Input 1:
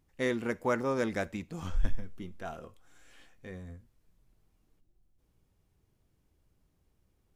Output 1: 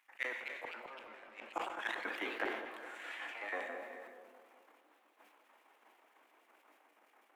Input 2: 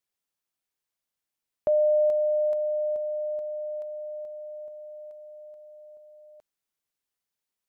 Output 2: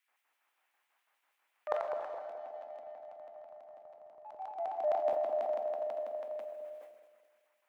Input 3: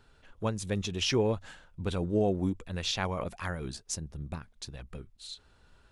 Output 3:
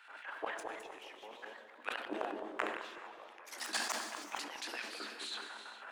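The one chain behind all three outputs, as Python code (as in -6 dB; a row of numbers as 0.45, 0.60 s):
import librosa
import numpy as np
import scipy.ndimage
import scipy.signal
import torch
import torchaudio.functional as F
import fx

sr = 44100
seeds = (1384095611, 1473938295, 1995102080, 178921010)

p1 = fx.tracing_dist(x, sr, depth_ms=0.036)
p2 = fx.high_shelf_res(p1, sr, hz=3100.0, db=-12.5, q=1.5)
p3 = fx.transient(p2, sr, attack_db=-9, sustain_db=6)
p4 = fx.filter_lfo_highpass(p3, sr, shape='square', hz=6.1, low_hz=770.0, high_hz=2600.0, q=0.89)
p5 = 10.0 ** (-34.5 / 20.0) * np.tanh(p4 / 10.0 ** (-34.5 / 20.0))
p6 = p4 + F.gain(torch.from_numpy(p5), -4.0).numpy()
p7 = scipy.signal.sosfilt(scipy.signal.cheby1(6, 6, 210.0, 'highpass', fs=sr, output='sos'), p6)
p8 = fx.gate_flip(p7, sr, shuts_db=-39.0, range_db=-31)
p9 = p8 + fx.echo_wet_lowpass(p8, sr, ms=210, feedback_pct=45, hz=640.0, wet_db=-4, dry=0)
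p10 = fx.echo_pitch(p9, sr, ms=276, semitones=2, count=3, db_per_echo=-6.0)
p11 = fx.rev_gated(p10, sr, seeds[0], gate_ms=480, shape='flat', drr_db=8.0)
p12 = fx.sustainer(p11, sr, db_per_s=55.0)
y = F.gain(torch.from_numpy(p12), 15.0).numpy()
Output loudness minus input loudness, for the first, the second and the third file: -7.5, -10.0, -9.5 LU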